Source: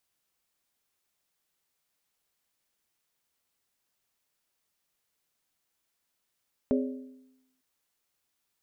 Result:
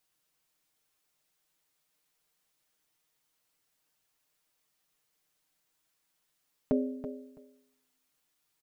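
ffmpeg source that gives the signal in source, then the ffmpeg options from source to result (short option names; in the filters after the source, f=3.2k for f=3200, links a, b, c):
-f lavfi -i "aevalsrc='0.0794*pow(10,-3*t/0.93)*sin(2*PI*259*t)+0.0501*pow(10,-3*t/0.737)*sin(2*PI*412.8*t)+0.0316*pow(10,-3*t/0.636)*sin(2*PI*553.2*t)+0.02*pow(10,-3*t/0.614)*sin(2*PI*594.7*t)':d=0.9:s=44100"
-af "aecho=1:1:6.5:0.65,aecho=1:1:330|660:0.316|0.0538"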